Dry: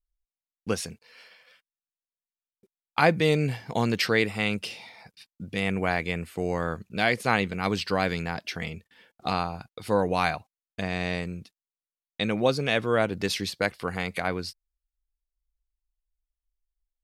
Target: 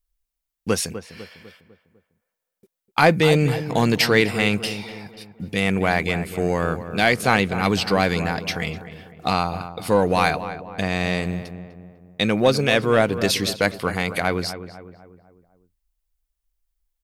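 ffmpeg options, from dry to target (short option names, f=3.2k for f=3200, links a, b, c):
-filter_complex "[0:a]highshelf=f=9.5k:g=7,asplit=2[a][b];[b]asoftclip=type=hard:threshold=-20.5dB,volume=-5.5dB[c];[a][c]amix=inputs=2:normalize=0,asplit=2[d][e];[e]adelay=250,lowpass=f=1.6k:p=1,volume=-11dB,asplit=2[f][g];[g]adelay=250,lowpass=f=1.6k:p=1,volume=0.49,asplit=2[h][i];[i]adelay=250,lowpass=f=1.6k:p=1,volume=0.49,asplit=2[j][k];[k]adelay=250,lowpass=f=1.6k:p=1,volume=0.49,asplit=2[l][m];[m]adelay=250,lowpass=f=1.6k:p=1,volume=0.49[n];[d][f][h][j][l][n]amix=inputs=6:normalize=0,volume=3dB"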